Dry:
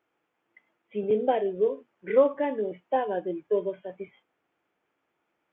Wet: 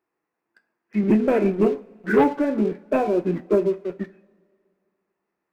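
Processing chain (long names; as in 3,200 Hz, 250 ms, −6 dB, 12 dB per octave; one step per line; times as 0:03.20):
formants moved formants −4 semitones
leveller curve on the samples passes 2
coupled-rooms reverb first 0.28 s, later 2.1 s, from −21 dB, DRR 10.5 dB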